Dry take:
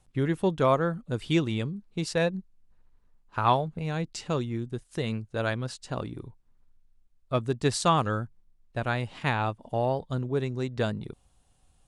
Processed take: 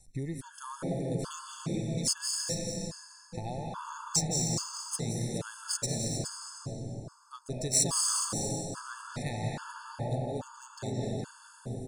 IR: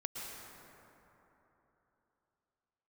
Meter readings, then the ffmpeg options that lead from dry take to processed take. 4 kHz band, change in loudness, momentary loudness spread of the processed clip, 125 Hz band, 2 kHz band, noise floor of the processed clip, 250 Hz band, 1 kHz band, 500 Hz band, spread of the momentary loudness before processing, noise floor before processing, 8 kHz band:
+1.5 dB, -4.0 dB, 14 LU, -5.0 dB, -11.0 dB, -56 dBFS, -6.0 dB, -11.5 dB, -9.5 dB, 11 LU, -64 dBFS, +13.0 dB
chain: -filter_complex "[0:a]acompressor=threshold=-39dB:ratio=2.5,aexciter=amount=15.5:drive=6.4:freq=4.8k,lowshelf=f=110:g=7,aecho=1:1:418:0.355[a];[1:a]atrim=start_sample=2205,asetrate=29547,aresample=44100[b];[a][b]afir=irnorm=-1:irlink=0,adynamicsmooth=sensitivity=3:basefreq=6.2k,equalizer=f=180:t=o:w=0.77:g=2,afftfilt=real='re*gt(sin(2*PI*1.2*pts/sr)*(1-2*mod(floor(b*sr/1024/880),2)),0)':imag='im*gt(sin(2*PI*1.2*pts/sr)*(1-2*mod(floor(b*sr/1024/880),2)),0)':win_size=1024:overlap=0.75"

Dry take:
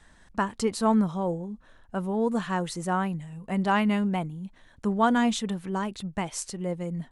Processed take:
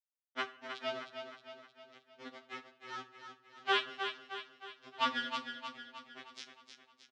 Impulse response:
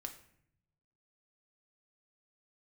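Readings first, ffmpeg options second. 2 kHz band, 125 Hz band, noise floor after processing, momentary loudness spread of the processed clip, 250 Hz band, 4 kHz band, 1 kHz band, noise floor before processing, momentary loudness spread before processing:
-5.0 dB, -35.0 dB, -78 dBFS, 21 LU, -26.5 dB, -0.5 dB, -11.0 dB, -57 dBFS, 13 LU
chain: -filter_complex "[0:a]agate=range=-9dB:threshold=-44dB:ratio=16:detection=peak,tiltshelf=f=1.3k:g=-6,acompressor=mode=upward:threshold=-29dB:ratio=2.5,aeval=exprs='0.282*(cos(1*acos(clip(val(0)/0.282,-1,1)))-cos(1*PI/2))+0.0891*(cos(3*acos(clip(val(0)/0.282,-1,1)))-cos(3*PI/2))':c=same,asoftclip=type=tanh:threshold=-15.5dB,adynamicsmooth=sensitivity=6.5:basefreq=860,aeval=exprs='val(0)+0.00158*(sin(2*PI*60*n/s)+sin(2*PI*2*60*n/s)/2+sin(2*PI*3*60*n/s)/3+sin(2*PI*4*60*n/s)/4+sin(2*PI*5*60*n/s)/5)':c=same,aeval=exprs='val(0)*gte(abs(val(0)),0.00841)':c=same,highpass=220,equalizer=f=320:t=q:w=4:g=7,equalizer=f=930:t=q:w=4:g=-8,equalizer=f=1.6k:t=q:w=4:g=-3,equalizer=f=3.2k:t=q:w=4:g=4,lowpass=f=5.1k:w=0.5412,lowpass=f=5.1k:w=1.3066,aecho=1:1:311|622|933|1244|1555|1866:0.422|0.215|0.11|0.0559|0.0285|0.0145,asplit=2[a][b];[1:a]atrim=start_sample=2205[c];[b][c]afir=irnorm=-1:irlink=0,volume=7dB[d];[a][d]amix=inputs=2:normalize=0,afftfilt=real='re*2.45*eq(mod(b,6),0)':imag='im*2.45*eq(mod(b,6),0)':win_size=2048:overlap=0.75"

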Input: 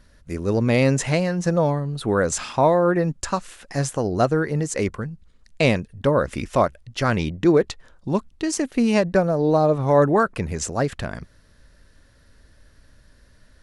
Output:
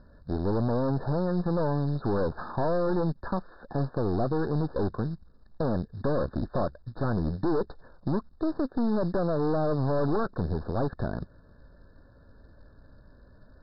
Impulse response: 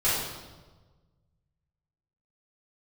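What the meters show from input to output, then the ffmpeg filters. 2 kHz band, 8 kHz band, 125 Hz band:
-15.0 dB, under -40 dB, -5.5 dB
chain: -af "deesser=0.55,lowshelf=f=81:g=-5.5,aeval=exprs='(tanh(25.1*val(0)+0.7)-tanh(0.7))/25.1':c=same,acompressor=threshold=-36dB:ratio=1.5,lowpass=1.1k,aresample=11025,acrusher=bits=6:mode=log:mix=0:aa=0.000001,aresample=44100,afftfilt=real='re*eq(mod(floor(b*sr/1024/1800),2),0)':imag='im*eq(mod(floor(b*sr/1024/1800),2),0)':win_size=1024:overlap=0.75,volume=7.5dB"

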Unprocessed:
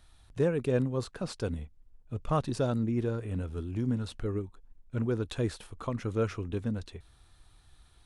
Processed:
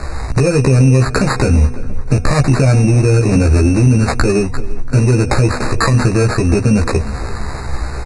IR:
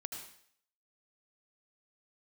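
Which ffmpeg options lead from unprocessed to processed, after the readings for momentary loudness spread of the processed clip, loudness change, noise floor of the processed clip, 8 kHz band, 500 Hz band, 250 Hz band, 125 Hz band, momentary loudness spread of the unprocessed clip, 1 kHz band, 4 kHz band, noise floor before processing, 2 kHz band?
12 LU, +19.5 dB, -23 dBFS, +25.5 dB, +16.0 dB, +18.0 dB, +22.5 dB, 12 LU, +19.0 dB, +20.0 dB, -61 dBFS, +24.0 dB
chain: -filter_complex "[0:a]bandreject=f=243.7:t=h:w=4,bandreject=f=487.4:t=h:w=4,bandreject=f=731.1:t=h:w=4,acrossover=split=130|5000[a][b][c];[a]acompressor=threshold=-39dB:ratio=4[d];[b]acompressor=threshold=-40dB:ratio=4[e];[c]acompressor=threshold=-56dB:ratio=4[f];[d][e][f]amix=inputs=3:normalize=0,asplit=2[g][h];[h]aeval=exprs='0.0158*(abs(mod(val(0)/0.0158+3,4)-2)-1)':c=same,volume=-11dB[i];[g][i]amix=inputs=2:normalize=0,acompressor=threshold=-44dB:ratio=3,acrusher=samples=15:mix=1:aa=0.000001,asplit=2[j][k];[k]adelay=15,volume=-2dB[l];[j][l]amix=inputs=2:normalize=0,asplit=2[m][n];[n]adelay=342,lowpass=f=2.4k:p=1,volume=-18dB,asplit=2[o][p];[p]adelay=342,lowpass=f=2.4k:p=1,volume=0.54,asplit=2[q][r];[r]adelay=342,lowpass=f=2.4k:p=1,volume=0.54,asplit=2[s][t];[t]adelay=342,lowpass=f=2.4k:p=1,volume=0.54,asplit=2[u][v];[v]adelay=342,lowpass=f=2.4k:p=1,volume=0.54[w];[m][o][q][s][u][w]amix=inputs=6:normalize=0,aresample=22050,aresample=44100,asuperstop=centerf=3200:order=20:qfactor=3.3,alimiter=level_in=35.5dB:limit=-1dB:release=50:level=0:latency=1,volume=-2dB"

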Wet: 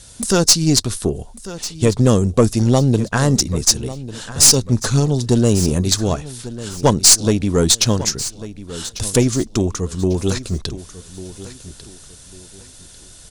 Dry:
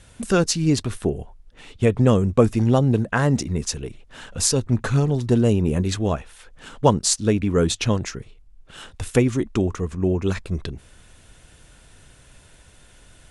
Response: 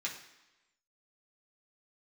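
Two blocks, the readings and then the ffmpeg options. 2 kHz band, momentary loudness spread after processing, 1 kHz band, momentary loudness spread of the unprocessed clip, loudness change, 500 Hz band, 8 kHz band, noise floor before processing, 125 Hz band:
+2.0 dB, 19 LU, +2.0 dB, 12 LU, +5.5 dB, +2.5 dB, +12.0 dB, -51 dBFS, +3.5 dB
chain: -filter_complex "[0:a]highshelf=f=3.4k:t=q:w=1.5:g=10,aeval=exprs='(tanh(1.41*val(0)+0.65)-tanh(0.65))/1.41':c=same,aeval=exprs='1.12*sin(PI/2*2*val(0)/1.12)':c=same,asplit=2[a][b];[b]aecho=0:1:1146|2292|3438:0.168|0.0504|0.0151[c];[a][c]amix=inputs=2:normalize=0,volume=-3.5dB"

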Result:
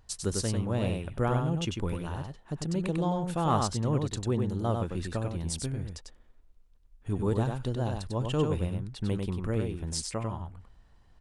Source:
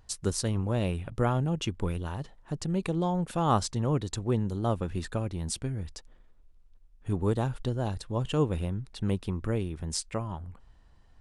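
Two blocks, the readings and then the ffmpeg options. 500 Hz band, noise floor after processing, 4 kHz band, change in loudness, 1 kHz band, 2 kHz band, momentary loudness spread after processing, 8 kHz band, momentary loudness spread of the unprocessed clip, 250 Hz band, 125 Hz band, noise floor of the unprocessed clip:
-0.5 dB, -59 dBFS, 0.0 dB, -0.5 dB, -0.5 dB, 0.0 dB, 9 LU, 0.0 dB, 9 LU, -0.5 dB, 0.0 dB, -57 dBFS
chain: -af "aecho=1:1:97:0.596,acontrast=83,volume=-8.5dB"

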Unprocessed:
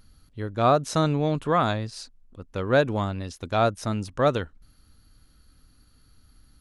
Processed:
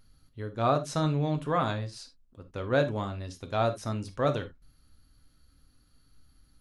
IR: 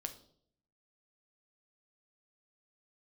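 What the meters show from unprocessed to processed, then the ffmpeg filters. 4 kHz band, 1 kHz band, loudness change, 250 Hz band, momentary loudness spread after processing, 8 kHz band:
-5.5 dB, -6.0 dB, -5.0 dB, -5.0 dB, 14 LU, -6.0 dB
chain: -filter_complex "[1:a]atrim=start_sample=2205,atrim=end_sample=3969[a];[0:a][a]afir=irnorm=-1:irlink=0,volume=-3.5dB"

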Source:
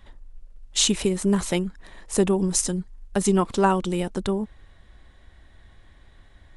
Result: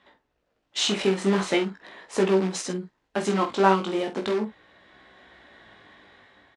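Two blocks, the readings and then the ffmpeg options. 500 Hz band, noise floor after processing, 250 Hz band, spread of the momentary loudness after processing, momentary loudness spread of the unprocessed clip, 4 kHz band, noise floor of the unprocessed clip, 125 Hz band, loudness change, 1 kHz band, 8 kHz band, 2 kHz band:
+1.0 dB, -75 dBFS, -3.0 dB, 12 LU, 9 LU, -1.0 dB, -53 dBFS, -5.0 dB, -1.5 dB, +1.5 dB, -9.5 dB, +3.5 dB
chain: -filter_complex "[0:a]dynaudnorm=f=360:g=5:m=10dB,asplit=2[a][b];[b]aeval=exprs='(mod(5.62*val(0)+1,2)-1)/5.62':c=same,volume=-10dB[c];[a][c]amix=inputs=2:normalize=0,highpass=280,lowpass=4.1k,flanger=delay=15.5:depth=5.2:speed=0.4,asplit=2[d][e];[e]adelay=47,volume=-9.5dB[f];[d][f]amix=inputs=2:normalize=0"

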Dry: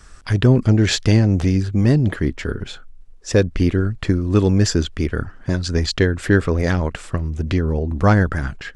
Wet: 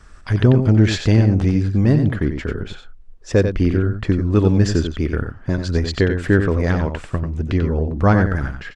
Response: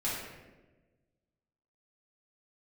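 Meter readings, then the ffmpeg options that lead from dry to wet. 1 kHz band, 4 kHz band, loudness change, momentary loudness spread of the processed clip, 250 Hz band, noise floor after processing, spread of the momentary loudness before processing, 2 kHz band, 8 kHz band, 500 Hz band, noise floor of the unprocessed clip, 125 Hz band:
0.0 dB, -4.5 dB, +0.5 dB, 9 LU, +0.5 dB, -42 dBFS, 10 LU, -1.0 dB, -7.0 dB, +0.5 dB, -42 dBFS, +1.0 dB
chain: -af "highshelf=f=4.1k:g=-10.5,aecho=1:1:92:0.422"

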